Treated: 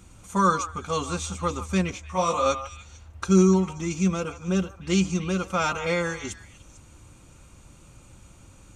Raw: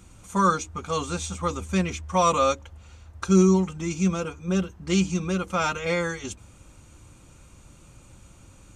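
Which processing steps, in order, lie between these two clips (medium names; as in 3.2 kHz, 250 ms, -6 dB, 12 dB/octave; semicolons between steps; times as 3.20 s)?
repeats whose band climbs or falls 149 ms, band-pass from 930 Hz, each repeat 1.4 oct, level -9.5 dB; 1.91–2.46 s: detune thickener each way 44 cents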